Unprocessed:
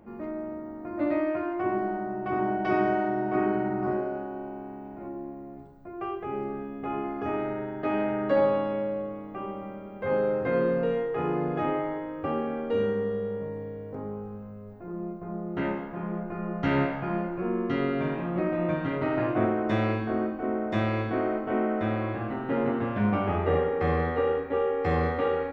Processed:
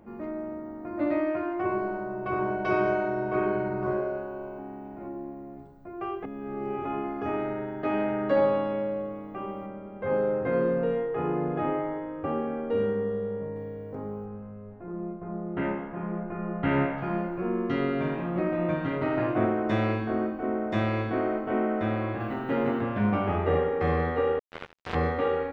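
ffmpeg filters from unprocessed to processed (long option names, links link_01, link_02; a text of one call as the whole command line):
ffmpeg -i in.wav -filter_complex "[0:a]asettb=1/sr,asplit=3[link_01][link_02][link_03];[link_01]atrim=end=1.654[link_04];[link_02]atrim=start=1.65:end=4.59,asetpts=PTS-STARTPTS,afade=type=in:duration=0.004:curve=qsin,afade=type=out:start_time=2.936:duration=0.004:curve=qsin,aecho=1:1:1.9:0.65,atrim=end_sample=129654[link_05];[link_03]atrim=start=4.586[link_06];[link_04][link_05]acrossfade=duration=0.004:curve1=hsin:curve2=qsin[link_07];[link_07][link_06]acrossfade=duration=0.004:curve1=qsin:curve2=hsin,asettb=1/sr,asplit=3[link_08][link_09][link_10];[link_08]atrim=end=9.664[link_11];[link_09]atrim=start=9.66:end=13.56,asetpts=PTS-STARTPTS,afade=type=in:duration=0.004:curve=qsin,afade=type=out:start_time=3.896:duration=0.004:curve=qsin,highshelf=frequency=3500:gain=-11.5[link_12];[link_10]atrim=start=13.556[link_13];[link_11][link_12]acrossfade=duration=0.004:curve1=hsin:curve2=qsin[link_14];[link_14][link_13]acrossfade=duration=0.004:curve1=qsin:curve2=hsin,asettb=1/sr,asplit=3[link_15][link_16][link_17];[link_15]atrim=end=14.254[link_18];[link_16]atrim=start=14.25:end=16.98,asetpts=PTS-STARTPTS,afade=type=in:duration=0.004:curve=qsin,afade=type=out:start_time=2.726:duration=0.004:curve=qsin,lowpass=frequency=3000:width=0.5412,lowpass=frequency=3000:width=1.3066[link_19];[link_17]atrim=start=16.976[link_20];[link_18][link_19]acrossfade=duration=0.004:curve1=hsin:curve2=qsin[link_21];[link_21][link_20]acrossfade=duration=0.004:curve1=qsin:curve2=hsin,asettb=1/sr,asplit=3[link_22][link_23][link_24];[link_22]atrim=end=22.204[link_25];[link_23]atrim=start=22.2:end=22.81,asetpts=PTS-STARTPTS,afade=type=in:duration=0.004:curve=qsin,afade=type=out:start_time=0.606:duration=0.004:curve=qsin,highshelf=frequency=3500:gain=9[link_26];[link_24]atrim=start=22.806[link_27];[link_25][link_26]acrossfade=duration=0.004:curve1=hsin:curve2=qsin[link_28];[link_28][link_27]acrossfade=duration=0.004:curve1=qsin:curve2=hsin,asettb=1/sr,asplit=3[link_29][link_30][link_31];[link_29]atrim=end=24.394[link_32];[link_30]atrim=start=24.39:end=24.95,asetpts=PTS-STARTPTS,afade=type=in:duration=0.004:curve=qsin,afade=type=out:start_time=0.556:duration=0.004:curve=qsin,acrusher=bits=2:mix=0:aa=0.5[link_33];[link_31]atrim=start=24.946[link_34];[link_32][link_33]acrossfade=duration=0.004:curve1=hsin:curve2=qsin[link_35];[link_35][link_34]acrossfade=duration=0.004:curve1=qsin:curve2=hsin,asplit=3[link_36][link_37][link_38];[link_36]atrim=end=6.242[link_39];[link_37]atrim=start=6.238:end=6.852,asetpts=PTS-STARTPTS,areverse[link_40];[link_38]atrim=start=6.848[link_41];[link_39][link_40]acrossfade=duration=0.004:curve1=hsin:curve2=hsin[link_42];[link_42][link_41]acrossfade=duration=0.004:curve1=hsin:curve2=hsin" out.wav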